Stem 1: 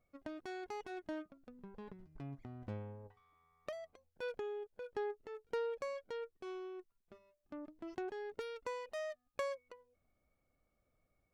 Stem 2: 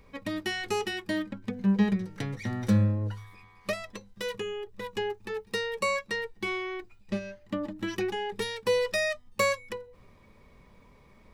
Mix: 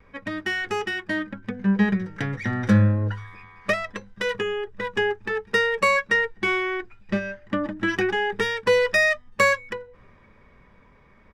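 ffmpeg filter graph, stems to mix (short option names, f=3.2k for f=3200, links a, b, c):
-filter_complex "[0:a]volume=-5dB[a];[1:a]bandreject=f=4.2k:w=9.3,volume=-1,adelay=3.4,volume=1.5dB[b];[a][b]amix=inputs=2:normalize=0,adynamicsmooth=sensitivity=5:basefreq=5.3k,equalizer=f=1.6k:w=2.1:g=10,dynaudnorm=f=380:g=11:m=5dB"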